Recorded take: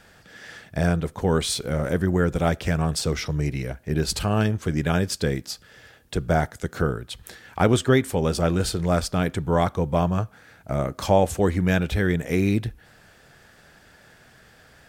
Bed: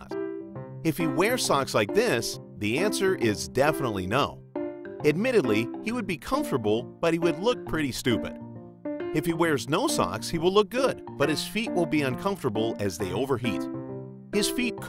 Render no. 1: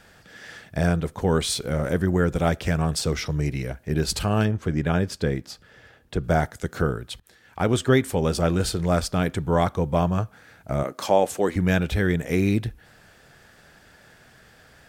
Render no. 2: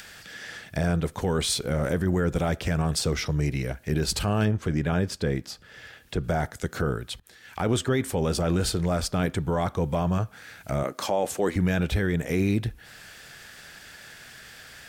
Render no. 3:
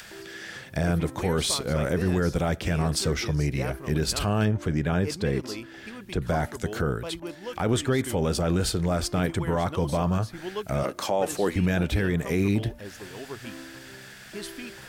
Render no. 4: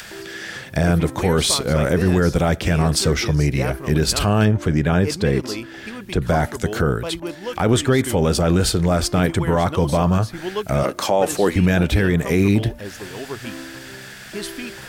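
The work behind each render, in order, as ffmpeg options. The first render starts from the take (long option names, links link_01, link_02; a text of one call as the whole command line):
ffmpeg -i in.wav -filter_complex "[0:a]asettb=1/sr,asplit=3[link_01][link_02][link_03];[link_01]atrim=end=4.454[link_04];[link_02]atrim=start=4.45:end=6.24,asetpts=PTS-STARTPTS,afade=type=in:duration=0.004:curve=qsin,afade=type=out:start_time=1.786:duration=0.004:curve=qsin,highshelf=frequency=3700:gain=-10[link_05];[link_03]atrim=start=6.236[link_06];[link_04][link_05]acrossfade=duration=0.004:curve1=hsin:curve2=qsin[link_07];[link_07][link_06]acrossfade=duration=0.004:curve1=qsin:curve2=hsin,asettb=1/sr,asplit=3[link_08][link_09][link_10];[link_08]atrim=end=10.834[link_11];[link_09]atrim=start=10.83:end=11.56,asetpts=PTS-STARTPTS,afade=type=in:duration=0.004:curve=qsin,afade=type=out:start_time=0.726:duration=0.004:curve=qsin,highpass=260[link_12];[link_10]atrim=start=11.556[link_13];[link_11][link_12]acrossfade=duration=0.004:curve1=hsin:curve2=qsin[link_14];[link_14][link_13]acrossfade=duration=0.004:curve1=qsin:curve2=hsin,asplit=2[link_15][link_16];[link_15]atrim=end=7.2,asetpts=PTS-STARTPTS,afade=type=out:start_time=7.196:duration=0.004:curve=hsin:silence=0.0944061[link_17];[link_16]atrim=start=7.2,asetpts=PTS-STARTPTS,afade=type=in:duration=0.73:silence=0.0944061[link_18];[link_17][link_18]concat=n=2:v=0:a=1" out.wav
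ffmpeg -i in.wav -filter_complex "[0:a]acrossover=split=1600[link_01][link_02];[link_02]acompressor=mode=upward:threshold=-36dB:ratio=2.5[link_03];[link_01][link_03]amix=inputs=2:normalize=0,alimiter=limit=-14.5dB:level=0:latency=1:release=18" out.wav
ffmpeg -i in.wav -i bed.wav -filter_complex "[1:a]volume=-12.5dB[link_01];[0:a][link_01]amix=inputs=2:normalize=0" out.wav
ffmpeg -i in.wav -af "volume=7.5dB" out.wav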